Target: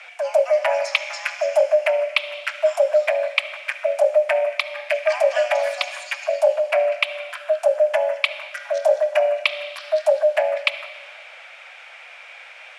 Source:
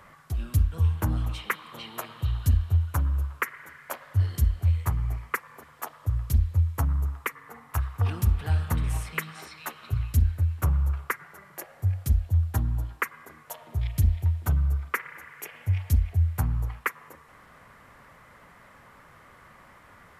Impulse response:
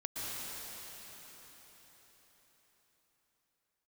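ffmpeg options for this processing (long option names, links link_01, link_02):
-filter_complex "[0:a]afreqshift=300,asplit=2[link_01][link_02];[1:a]atrim=start_sample=2205,asetrate=74970,aresample=44100[link_03];[link_02][link_03]afir=irnorm=-1:irlink=0,volume=-10dB[link_04];[link_01][link_04]amix=inputs=2:normalize=0,asetrate=69678,aresample=44100,highpass=410,equalizer=frequency=580:width_type=q:width=4:gain=-3,equalizer=frequency=1600:width_type=q:width=4:gain=5,equalizer=frequency=2400:width_type=q:width=4:gain=6,equalizer=frequency=3800:width_type=q:width=4:gain=-7,lowpass=frequency=9000:width=0.5412,lowpass=frequency=9000:width=1.3066,volume=7dB"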